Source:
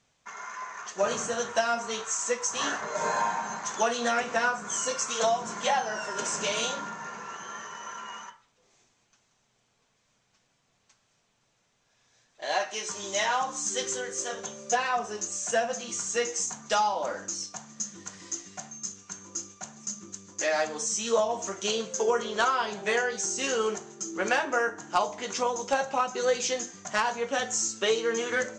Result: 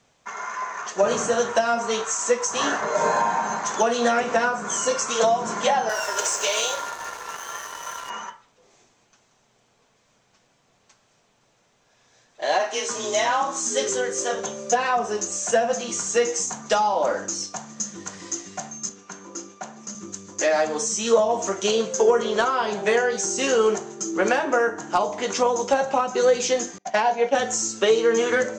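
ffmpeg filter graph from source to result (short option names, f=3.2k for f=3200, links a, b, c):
-filter_complex "[0:a]asettb=1/sr,asplit=3[a][b][c];[a]atrim=end=5.894[d];[b]atrim=start=5.89:end=8.1,asetpts=PTS-STARTPTS,afade=t=in:d=0.004:c=qsin,afade=t=out:st=2.206:d=0.004:c=qsin,highpass=f=440:w=0.5412,highpass=f=440:w=1.3066,highshelf=f=2.6k:g=8.5,aeval=exprs='sgn(val(0))*max(abs(val(0))-0.00794,0)':c=same[e];[c]atrim=start=8.096[f];[d][e]acrossfade=d=0.004:c1=hsin:c2=qsin[g];[g][f]acrossfade=d=0.004:c1=qsin:c2=hsin,asettb=1/sr,asplit=3[h][i][j];[h]atrim=end=12.594[k];[i]atrim=start=12.59:end=13.89,asetpts=PTS-STARTPTS,afade=t=in:d=0.004:c=qsin,afade=t=out:st=1.296:d=0.004:c=qsin,afreqshift=32,asplit=2[l][m];[m]adelay=38,volume=-9.5dB[n];[l][n]amix=inputs=2:normalize=0,atrim=end_sample=57330[o];[j]atrim=start=13.886[p];[k][o]acrossfade=d=0.004:c1=hsin:c2=qsin[q];[q][p]acrossfade=d=0.004:c1=qsin:c2=hsin,asettb=1/sr,asplit=3[r][s][t];[r]atrim=end=18.894[u];[s]atrim=start=18.89:end=19.95,asetpts=PTS-STARTPTS,afade=t=in:d=0.004:c=qsin,afade=t=out:st=1.056:d=0.004:c=qsin,highpass=200,aemphasis=mode=reproduction:type=50fm[v];[t]atrim=start=19.946[w];[u][v]acrossfade=d=0.004:c1=hsin:c2=qsin[x];[x][w]acrossfade=d=0.004:c1=qsin:c2=hsin,asettb=1/sr,asplit=3[y][z][aa];[y]atrim=end=26.784[ab];[z]atrim=start=26.78:end=27.35,asetpts=PTS-STARTPTS,afade=t=in:d=0.004:c=qsin,afade=t=out:st=0.566:d=0.004:c=qsin,agate=range=-33dB:threshold=-35dB:ratio=3:release=100:detection=peak,highpass=210,equalizer=f=750:t=q:w=4:g=10,equalizer=f=1.2k:t=q:w=4:g=-10,equalizer=f=2.3k:t=q:w=4:g=4,lowpass=f=6.2k:w=0.5412,lowpass=f=6.2k:w=1.3066[ac];[aa]atrim=start=27.346[ad];[ab][ac]acrossfade=d=0.004:c1=hsin:c2=qsin[ae];[ae][ad]acrossfade=d=0.004:c1=qsin:c2=hsin,acrossover=split=380[af][ag];[ag]acompressor=threshold=-27dB:ratio=6[ah];[af][ah]amix=inputs=2:normalize=0,equalizer=f=510:w=0.49:g=5.5,acontrast=73,volume=-1.5dB"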